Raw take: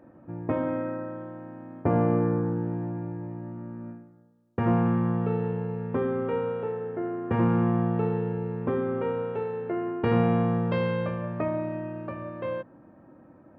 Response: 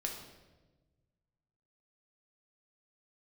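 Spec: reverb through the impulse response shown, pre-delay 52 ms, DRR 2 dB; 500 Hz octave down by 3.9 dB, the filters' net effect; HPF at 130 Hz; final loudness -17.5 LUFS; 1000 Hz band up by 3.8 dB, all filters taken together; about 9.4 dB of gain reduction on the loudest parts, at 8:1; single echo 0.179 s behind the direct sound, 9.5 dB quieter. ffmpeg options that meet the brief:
-filter_complex "[0:a]highpass=130,equalizer=f=500:t=o:g=-6.5,equalizer=f=1k:t=o:g=7,acompressor=threshold=-30dB:ratio=8,aecho=1:1:179:0.335,asplit=2[a][b];[1:a]atrim=start_sample=2205,adelay=52[c];[b][c]afir=irnorm=-1:irlink=0,volume=-3dB[d];[a][d]amix=inputs=2:normalize=0,volume=14dB"

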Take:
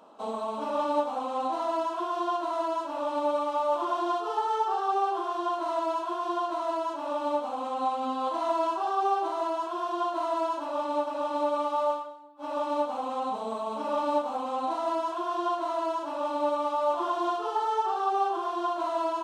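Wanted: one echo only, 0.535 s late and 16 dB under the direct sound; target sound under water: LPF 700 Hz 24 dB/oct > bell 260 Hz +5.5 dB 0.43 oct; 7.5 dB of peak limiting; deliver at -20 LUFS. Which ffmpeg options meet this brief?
-af "alimiter=limit=-22.5dB:level=0:latency=1,lowpass=f=700:w=0.5412,lowpass=f=700:w=1.3066,equalizer=f=260:t=o:w=0.43:g=5.5,aecho=1:1:535:0.158,volume=14.5dB"

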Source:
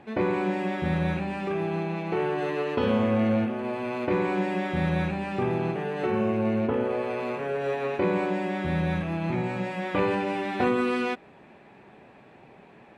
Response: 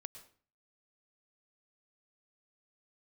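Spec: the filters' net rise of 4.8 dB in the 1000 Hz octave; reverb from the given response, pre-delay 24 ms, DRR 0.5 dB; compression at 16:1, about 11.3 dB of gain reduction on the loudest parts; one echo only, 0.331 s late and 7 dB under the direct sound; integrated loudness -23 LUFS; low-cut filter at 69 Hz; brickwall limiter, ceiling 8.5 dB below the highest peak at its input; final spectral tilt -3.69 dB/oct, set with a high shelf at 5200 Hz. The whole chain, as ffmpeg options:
-filter_complex "[0:a]highpass=69,equalizer=f=1k:t=o:g=6.5,highshelf=f=5.2k:g=-6.5,acompressor=threshold=-30dB:ratio=16,alimiter=level_in=2.5dB:limit=-24dB:level=0:latency=1,volume=-2.5dB,aecho=1:1:331:0.447,asplit=2[a][b];[1:a]atrim=start_sample=2205,adelay=24[c];[b][c]afir=irnorm=-1:irlink=0,volume=4.5dB[d];[a][d]amix=inputs=2:normalize=0,volume=8.5dB"

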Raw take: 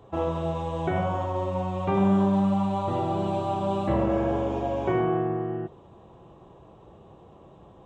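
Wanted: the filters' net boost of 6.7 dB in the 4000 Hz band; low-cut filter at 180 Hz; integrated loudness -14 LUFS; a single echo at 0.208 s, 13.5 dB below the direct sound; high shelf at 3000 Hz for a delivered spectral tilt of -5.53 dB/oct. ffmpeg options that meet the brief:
-af "highpass=180,highshelf=f=3k:g=5.5,equalizer=f=4k:t=o:g=5,aecho=1:1:208:0.211,volume=13dB"

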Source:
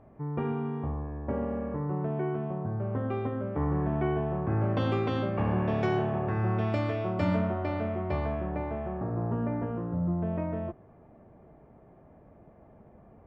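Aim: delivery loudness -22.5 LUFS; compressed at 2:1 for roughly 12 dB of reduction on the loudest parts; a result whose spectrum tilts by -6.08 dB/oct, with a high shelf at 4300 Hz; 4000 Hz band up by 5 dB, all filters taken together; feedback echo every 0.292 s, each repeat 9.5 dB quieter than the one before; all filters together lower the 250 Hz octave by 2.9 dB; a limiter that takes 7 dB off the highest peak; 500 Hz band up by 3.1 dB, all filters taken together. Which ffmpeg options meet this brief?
-af "equalizer=f=250:t=o:g=-6.5,equalizer=f=500:t=o:g=6,equalizer=f=4k:t=o:g=3.5,highshelf=f=4.3k:g=6.5,acompressor=threshold=-46dB:ratio=2,alimiter=level_in=10dB:limit=-24dB:level=0:latency=1,volume=-10dB,aecho=1:1:292|584|876|1168:0.335|0.111|0.0365|0.012,volume=20dB"

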